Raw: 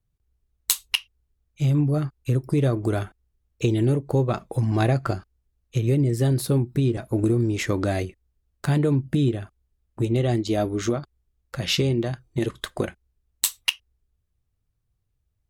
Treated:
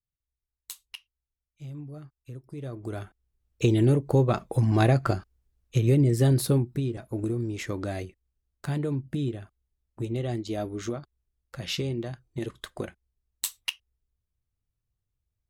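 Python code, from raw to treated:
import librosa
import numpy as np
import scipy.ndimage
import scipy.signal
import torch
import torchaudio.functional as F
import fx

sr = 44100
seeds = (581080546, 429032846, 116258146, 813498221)

y = fx.gain(x, sr, db=fx.line((2.49, -19.0), (2.86, -11.5), (3.68, 0.0), (6.46, 0.0), (6.88, -8.0)))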